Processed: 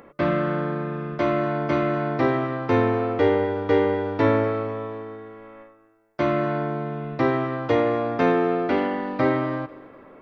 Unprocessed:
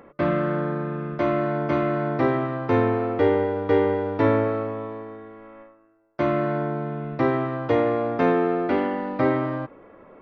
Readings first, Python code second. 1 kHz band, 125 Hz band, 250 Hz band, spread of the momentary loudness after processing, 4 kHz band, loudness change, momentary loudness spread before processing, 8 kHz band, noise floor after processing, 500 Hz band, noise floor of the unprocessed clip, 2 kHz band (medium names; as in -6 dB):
+0.5 dB, 0.0 dB, 0.0 dB, 10 LU, +4.0 dB, +0.5 dB, 10 LU, no reading, -52 dBFS, 0.0 dB, -52 dBFS, +1.5 dB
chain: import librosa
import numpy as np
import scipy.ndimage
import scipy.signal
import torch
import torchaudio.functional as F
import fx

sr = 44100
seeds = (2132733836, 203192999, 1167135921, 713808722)

p1 = fx.high_shelf(x, sr, hz=3400.0, db=8.0)
y = p1 + fx.echo_feedback(p1, sr, ms=248, feedback_pct=45, wet_db=-21.5, dry=0)